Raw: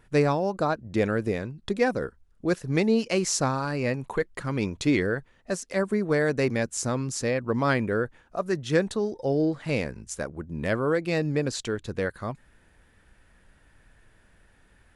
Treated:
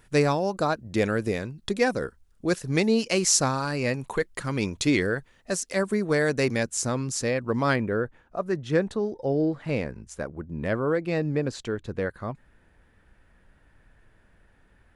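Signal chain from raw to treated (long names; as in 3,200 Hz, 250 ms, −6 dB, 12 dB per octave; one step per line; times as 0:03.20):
high-shelf EQ 3,300 Hz +8 dB, from 0:06.63 +3 dB, from 0:07.76 −9.5 dB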